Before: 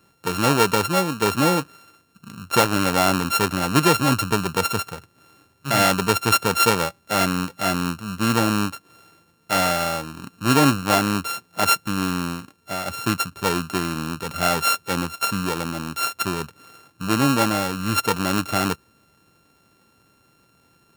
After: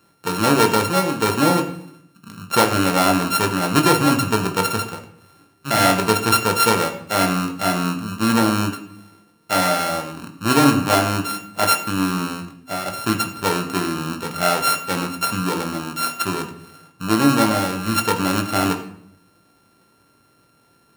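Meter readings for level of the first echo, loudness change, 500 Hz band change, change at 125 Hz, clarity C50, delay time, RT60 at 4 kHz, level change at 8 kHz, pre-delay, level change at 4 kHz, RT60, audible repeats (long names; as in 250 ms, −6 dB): no echo audible, +2.0 dB, +2.5 dB, +1.0 dB, 10.0 dB, no echo audible, 0.50 s, +1.5 dB, 18 ms, +1.5 dB, 0.65 s, no echo audible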